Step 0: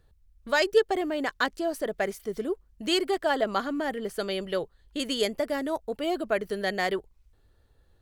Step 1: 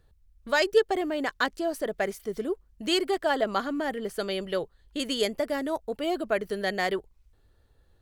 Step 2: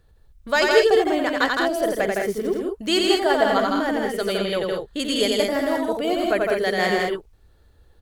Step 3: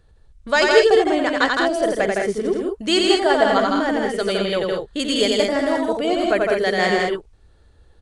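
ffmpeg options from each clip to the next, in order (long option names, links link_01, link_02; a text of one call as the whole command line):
ffmpeg -i in.wav -af anull out.wav
ffmpeg -i in.wav -af "aecho=1:1:88|161|195|210:0.668|0.668|0.376|0.447,volume=4dB" out.wav
ffmpeg -i in.wav -af "aresample=22050,aresample=44100,volume=2.5dB" out.wav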